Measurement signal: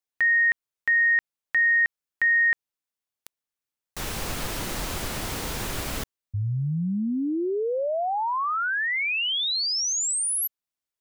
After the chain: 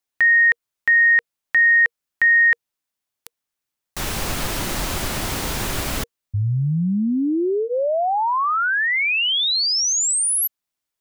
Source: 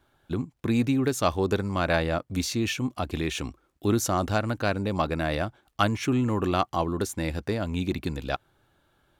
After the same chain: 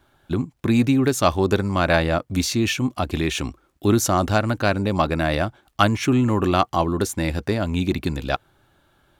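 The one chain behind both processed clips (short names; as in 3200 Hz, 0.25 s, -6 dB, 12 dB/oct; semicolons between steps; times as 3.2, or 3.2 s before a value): notch 470 Hz, Q 13; gain +6 dB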